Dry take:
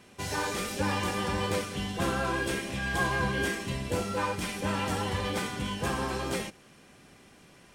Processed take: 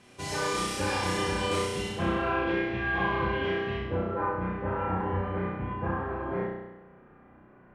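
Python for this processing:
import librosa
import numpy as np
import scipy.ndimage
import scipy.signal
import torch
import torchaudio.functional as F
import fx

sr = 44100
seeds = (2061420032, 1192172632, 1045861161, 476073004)

y = fx.lowpass(x, sr, hz=fx.steps((0.0, 11000.0), (1.89, 2900.0), (3.81, 1600.0)), slope=24)
y = fx.room_flutter(y, sr, wall_m=5.6, rt60_s=1.0)
y = y * 10.0 ** (-2.5 / 20.0)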